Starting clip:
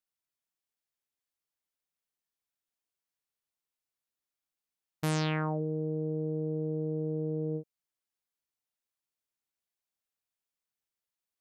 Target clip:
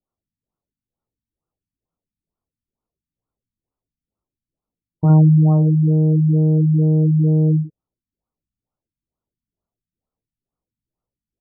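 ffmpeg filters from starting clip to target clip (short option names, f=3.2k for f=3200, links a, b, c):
-af "lowshelf=f=280:g=12,aecho=1:1:18|64:0.631|0.562,afftfilt=real='re*lt(b*sr/1024,260*pow(1500/260,0.5+0.5*sin(2*PI*2.2*pts/sr)))':imag='im*lt(b*sr/1024,260*pow(1500/260,0.5+0.5*sin(2*PI*2.2*pts/sr)))':win_size=1024:overlap=0.75,volume=7dB"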